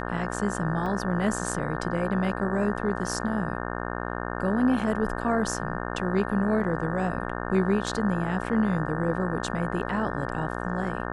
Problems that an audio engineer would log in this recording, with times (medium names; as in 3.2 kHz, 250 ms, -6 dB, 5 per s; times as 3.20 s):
buzz 60 Hz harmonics 30 -32 dBFS
0.86 s: dropout 2.1 ms